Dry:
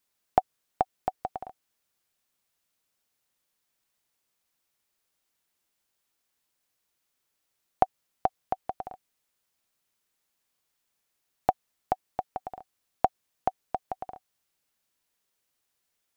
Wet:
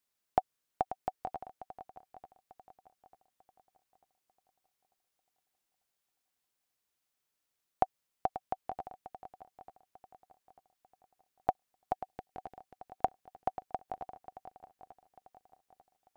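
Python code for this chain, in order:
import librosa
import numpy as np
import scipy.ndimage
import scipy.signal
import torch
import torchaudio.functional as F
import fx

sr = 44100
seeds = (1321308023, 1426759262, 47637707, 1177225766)

y = fx.band_shelf(x, sr, hz=870.0, db=-10.0, octaves=1.3, at=(11.93, 12.57))
y = fx.echo_swing(y, sr, ms=894, ratio=1.5, feedback_pct=34, wet_db=-13.0)
y = y * librosa.db_to_amplitude(-6.0)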